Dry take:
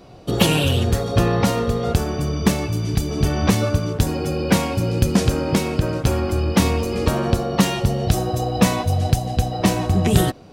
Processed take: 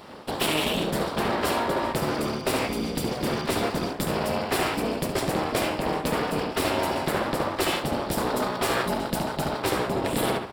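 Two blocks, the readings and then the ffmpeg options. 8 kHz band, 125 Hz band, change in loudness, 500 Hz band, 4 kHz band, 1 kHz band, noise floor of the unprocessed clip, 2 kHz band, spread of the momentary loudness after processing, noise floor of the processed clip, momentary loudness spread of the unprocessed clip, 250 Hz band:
-5.5 dB, -15.0 dB, -6.5 dB, -3.5 dB, -3.5 dB, -1.0 dB, -28 dBFS, -1.0 dB, 3 LU, -35 dBFS, 4 LU, -8.0 dB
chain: -filter_complex "[0:a]asplit=2[s0][s1];[s1]adelay=71,lowpass=f=3500:p=1,volume=0.531,asplit=2[s2][s3];[s3]adelay=71,lowpass=f=3500:p=1,volume=0.39,asplit=2[s4][s5];[s5]adelay=71,lowpass=f=3500:p=1,volume=0.39,asplit=2[s6][s7];[s7]adelay=71,lowpass=f=3500:p=1,volume=0.39,asplit=2[s8][s9];[s9]adelay=71,lowpass=f=3500:p=1,volume=0.39[s10];[s0][s2][s4][s6][s8][s10]amix=inputs=6:normalize=0,aeval=exprs='abs(val(0))':c=same,equalizer=f=6300:w=5.3:g=-11.5,areverse,acompressor=threshold=0.0794:ratio=6,areverse,highpass=f=180:p=1,volume=1.88"

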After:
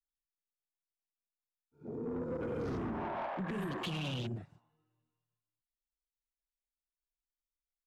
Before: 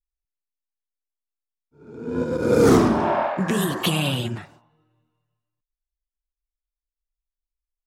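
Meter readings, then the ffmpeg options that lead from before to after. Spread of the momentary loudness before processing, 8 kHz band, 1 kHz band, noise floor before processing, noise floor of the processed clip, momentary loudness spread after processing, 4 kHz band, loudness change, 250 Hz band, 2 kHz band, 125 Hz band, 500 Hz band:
15 LU, -26.0 dB, -16.5 dB, under -85 dBFS, under -85 dBFS, 9 LU, -16.5 dB, -18.0 dB, -17.5 dB, -16.0 dB, -14.5 dB, -18.5 dB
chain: -filter_complex "[0:a]bandreject=f=600:w=19,afwtdn=0.02,acrossover=split=130[s0][s1];[s1]alimiter=limit=0.15:level=0:latency=1:release=159[s2];[s0][s2]amix=inputs=2:normalize=0,acompressor=threshold=0.00794:ratio=2.5,asoftclip=type=tanh:threshold=0.0178,volume=1.41"

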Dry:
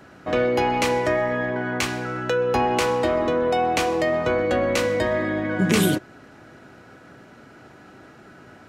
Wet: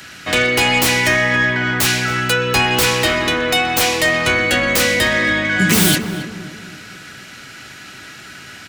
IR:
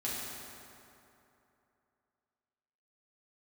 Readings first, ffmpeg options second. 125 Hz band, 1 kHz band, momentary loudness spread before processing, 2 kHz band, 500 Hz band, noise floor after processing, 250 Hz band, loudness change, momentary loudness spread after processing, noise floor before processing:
+7.0 dB, +3.0 dB, 5 LU, +13.0 dB, 0.0 dB, -37 dBFS, +4.0 dB, +7.5 dB, 18 LU, -48 dBFS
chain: -filter_complex "[0:a]bass=f=250:g=7,treble=f=4000:g=0,acrossover=split=200|2000[s0][s1][s2];[s2]aeval=exprs='0.266*sin(PI/2*10*val(0)/0.266)':c=same[s3];[s0][s1][s3]amix=inputs=3:normalize=0,asplit=2[s4][s5];[s5]adelay=274,lowpass=f=1400:p=1,volume=0.398,asplit=2[s6][s7];[s7]adelay=274,lowpass=f=1400:p=1,volume=0.45,asplit=2[s8][s9];[s9]adelay=274,lowpass=f=1400:p=1,volume=0.45,asplit=2[s10][s11];[s11]adelay=274,lowpass=f=1400:p=1,volume=0.45,asplit=2[s12][s13];[s13]adelay=274,lowpass=f=1400:p=1,volume=0.45[s14];[s4][s6][s8][s10][s12][s14]amix=inputs=6:normalize=0,volume=0.891"

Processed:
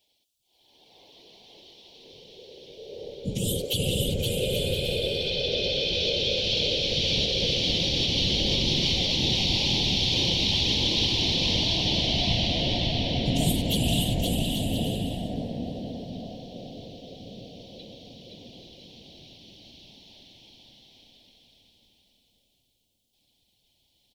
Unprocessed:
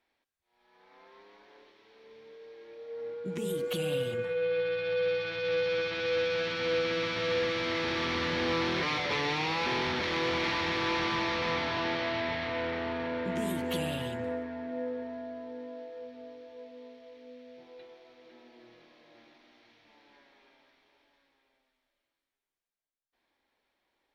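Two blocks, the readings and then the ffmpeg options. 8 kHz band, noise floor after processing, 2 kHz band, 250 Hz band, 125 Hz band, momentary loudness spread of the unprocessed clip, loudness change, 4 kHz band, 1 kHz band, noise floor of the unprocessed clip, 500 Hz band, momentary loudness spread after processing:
+14.5 dB, -71 dBFS, -2.0 dB, +6.0 dB, +13.0 dB, 18 LU, +7.0 dB, +14.0 dB, -5.0 dB, under -85 dBFS, -1.0 dB, 17 LU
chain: -filter_complex "[0:a]afftfilt=real='hypot(re,im)*cos(2*PI*random(0))':imag='hypot(re,im)*sin(2*PI*random(1))':win_size=512:overlap=0.75,firequalizer=gain_entry='entry(750,0);entry(1300,-28);entry(3000,13)':delay=0.05:min_phase=1,asplit=2[s0][s1];[s1]adelay=1123,lowpass=f=2000:p=1,volume=0.0794,asplit=2[s2][s3];[s3]adelay=1123,lowpass=f=2000:p=1,volume=0.51,asplit=2[s4][s5];[s5]adelay=1123,lowpass=f=2000:p=1,volume=0.51,asplit=2[s6][s7];[s7]adelay=1123,lowpass=f=2000:p=1,volume=0.51[s8];[s2][s4][s6][s8]amix=inputs=4:normalize=0[s9];[s0][s9]amix=inputs=2:normalize=0,alimiter=level_in=1.12:limit=0.0631:level=0:latency=1:release=259,volume=0.891,asubboost=boost=5.5:cutoff=180,asplit=2[s10][s11];[s11]aecho=0:1:520|832|1019|1132|1199:0.631|0.398|0.251|0.158|0.1[s12];[s10][s12]amix=inputs=2:normalize=0,volume=2.51"

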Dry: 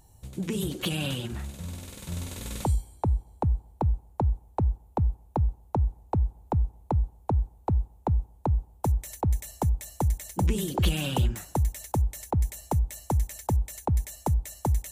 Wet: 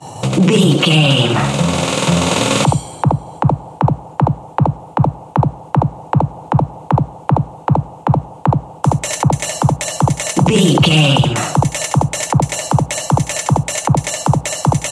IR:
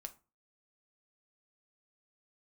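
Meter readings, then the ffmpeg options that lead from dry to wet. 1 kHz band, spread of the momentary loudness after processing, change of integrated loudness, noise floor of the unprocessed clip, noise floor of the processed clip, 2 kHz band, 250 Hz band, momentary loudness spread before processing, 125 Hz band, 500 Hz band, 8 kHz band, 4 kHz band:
+17.0 dB, 7 LU, +14.5 dB, -56 dBFS, -36 dBFS, +21.5 dB, +18.0 dB, 5 LU, +13.5 dB, +17.5 dB, +19.0 dB, +20.5 dB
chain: -filter_complex "[0:a]highpass=f=140:w=0.5412,highpass=f=140:w=1.3066,equalizer=f=140:t=q:w=4:g=5,equalizer=f=220:t=q:w=4:g=-10,equalizer=f=380:t=q:w=4:g=-9,equalizer=f=1200:t=q:w=4:g=4,equalizer=f=1700:t=q:w=4:g=-5,equalizer=f=2800:t=q:w=4:g=6,lowpass=f=8600:w=0.5412,lowpass=f=8600:w=1.3066,aecho=1:1:71:0.422,acrossover=split=200|3000[s0][s1][s2];[s1]acompressor=threshold=0.0158:ratio=2.5[s3];[s0][s3][s2]amix=inputs=3:normalize=0,agate=range=0.0224:threshold=0.00112:ratio=3:detection=peak,acompressor=threshold=0.00158:ratio=2,equalizer=f=500:w=0.3:g=10.5,asplit=2[s4][s5];[1:a]atrim=start_sample=2205[s6];[s5][s6]afir=irnorm=-1:irlink=0,volume=0.531[s7];[s4][s7]amix=inputs=2:normalize=0,alimiter=level_in=31.6:limit=0.891:release=50:level=0:latency=1,volume=0.891"

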